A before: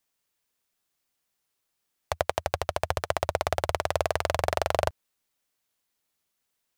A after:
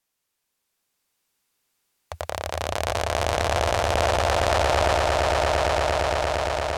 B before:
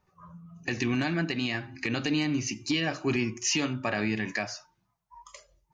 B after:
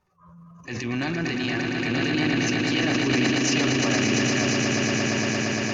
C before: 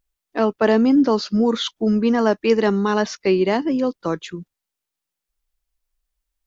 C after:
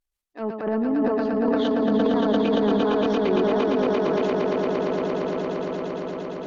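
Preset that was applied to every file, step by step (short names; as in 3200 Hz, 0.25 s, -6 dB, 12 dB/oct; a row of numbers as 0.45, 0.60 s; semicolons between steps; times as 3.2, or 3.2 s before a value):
treble ducked by the level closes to 1100 Hz, closed at -13.5 dBFS; swelling echo 0.115 s, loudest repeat 8, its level -6 dB; transient shaper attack -8 dB, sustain +8 dB; match loudness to -23 LUFS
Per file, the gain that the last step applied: +1.5, +0.5, -8.0 dB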